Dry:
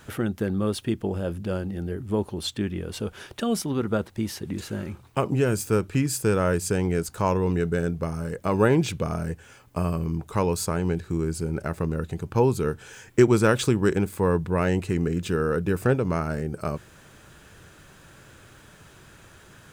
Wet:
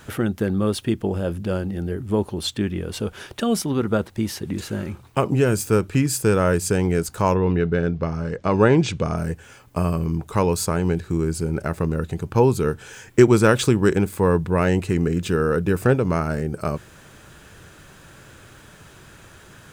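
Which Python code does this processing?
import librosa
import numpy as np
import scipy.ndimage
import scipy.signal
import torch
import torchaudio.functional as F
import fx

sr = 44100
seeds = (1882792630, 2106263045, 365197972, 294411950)

y = fx.lowpass(x, sr, hz=fx.line((7.34, 3800.0), (9.16, 8400.0)), slope=24, at=(7.34, 9.16), fade=0.02)
y = y * librosa.db_to_amplitude(4.0)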